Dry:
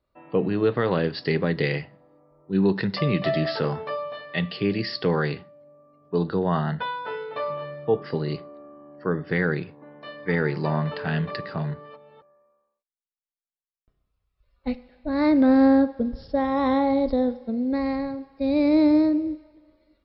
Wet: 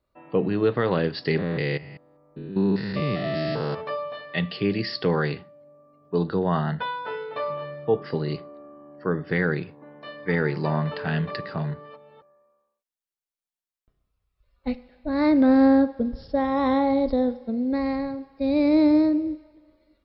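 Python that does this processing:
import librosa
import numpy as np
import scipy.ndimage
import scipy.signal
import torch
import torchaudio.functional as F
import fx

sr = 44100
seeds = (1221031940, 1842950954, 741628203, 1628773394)

y = fx.spec_steps(x, sr, hold_ms=200, at=(1.37, 3.8), fade=0.02)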